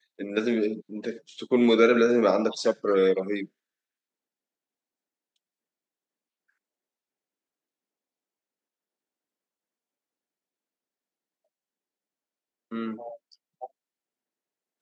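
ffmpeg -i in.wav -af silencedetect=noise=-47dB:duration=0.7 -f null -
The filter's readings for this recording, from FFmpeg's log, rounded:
silence_start: 3.46
silence_end: 12.71 | silence_duration: 9.26
silence_start: 13.66
silence_end: 14.81 | silence_duration: 1.15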